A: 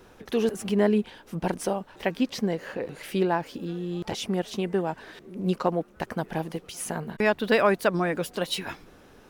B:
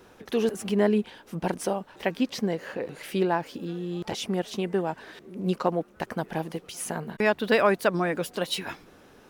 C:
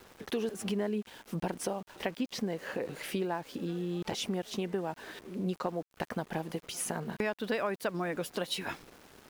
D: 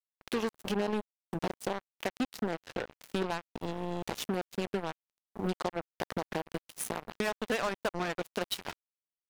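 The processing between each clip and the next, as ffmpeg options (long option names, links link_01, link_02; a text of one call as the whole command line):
ffmpeg -i in.wav -af "lowshelf=frequency=65:gain=-9.5" out.wav
ffmpeg -i in.wav -af "acompressor=threshold=-31dB:ratio=4,aeval=exprs='val(0)*gte(abs(val(0)),0.00299)':channel_layout=same" out.wav
ffmpeg -i in.wav -af "acrusher=bits=4:mix=0:aa=0.5" out.wav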